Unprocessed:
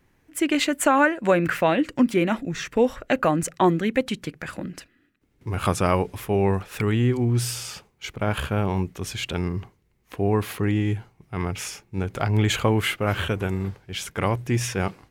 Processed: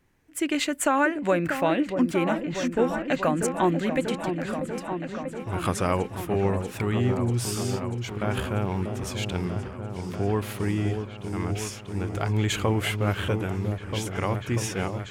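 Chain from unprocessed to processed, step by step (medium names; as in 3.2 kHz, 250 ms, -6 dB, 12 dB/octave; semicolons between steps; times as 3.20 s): peaking EQ 7.8 kHz +2.5 dB; delay with an opening low-pass 640 ms, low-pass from 750 Hz, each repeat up 1 oct, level -6 dB; trim -4 dB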